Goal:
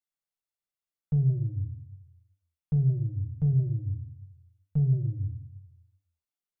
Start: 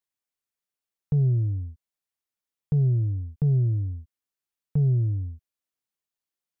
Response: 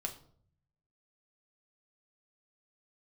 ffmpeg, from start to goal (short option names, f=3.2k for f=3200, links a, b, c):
-filter_complex "[1:a]atrim=start_sample=2205[a];[0:a][a]afir=irnorm=-1:irlink=0,volume=-6dB"